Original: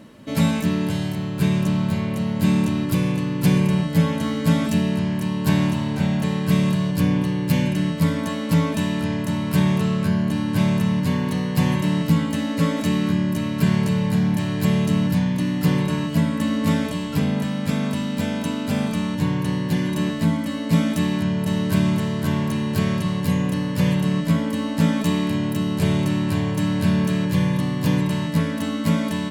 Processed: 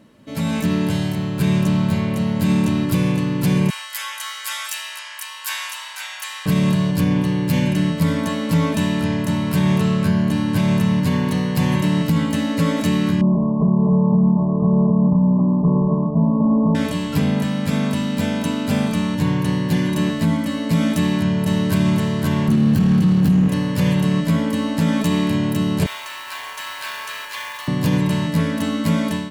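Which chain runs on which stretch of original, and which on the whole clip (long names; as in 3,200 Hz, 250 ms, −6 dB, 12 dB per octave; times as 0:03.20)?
0:03.70–0:06.46: inverse Chebyshev high-pass filter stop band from 320 Hz, stop band 60 dB + high-shelf EQ 5,100 Hz +9 dB + notch filter 4,200 Hz, Q 14
0:13.21–0:16.75: variable-slope delta modulation 16 kbit/s + linear-phase brick-wall low-pass 1,200 Hz + comb filter 4.8 ms, depth 88%
0:22.48–0:23.48: lower of the sound and its delayed copy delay 0.67 ms + parametric band 190 Hz +13.5 dB 1.4 octaves
0:25.86–0:27.68: high-pass filter 930 Hz 24 dB per octave + high-shelf EQ 8,600 Hz −11.5 dB + log-companded quantiser 4 bits
whole clip: brickwall limiter −12 dBFS; automatic gain control gain up to 11 dB; level −6 dB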